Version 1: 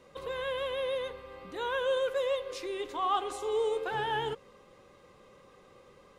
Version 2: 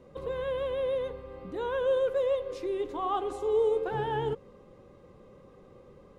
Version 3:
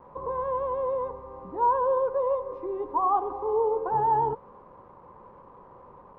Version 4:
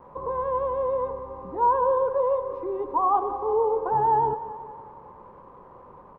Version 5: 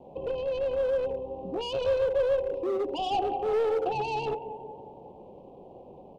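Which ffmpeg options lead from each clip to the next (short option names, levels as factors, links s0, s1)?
-af "tiltshelf=f=810:g=8.5"
-af "acrusher=bits=8:mix=0:aa=0.000001,lowpass=f=980:t=q:w=9.2,volume=0.794"
-af "aecho=1:1:183|366|549|732|915|1098:0.2|0.118|0.0695|0.041|0.0242|0.0143,volume=1.26"
-filter_complex "[0:a]asplit=2[s0][s1];[s1]highpass=f=720:p=1,volume=8.91,asoftclip=type=tanh:threshold=0.316[s2];[s0][s2]amix=inputs=2:normalize=0,lowpass=f=1200:p=1,volume=0.501,acrossover=split=440[s3][s4];[s3]volume=28.2,asoftclip=hard,volume=0.0355[s5];[s4]asuperstop=centerf=1400:order=12:qfactor=0.73[s6];[s5][s6]amix=inputs=2:normalize=0"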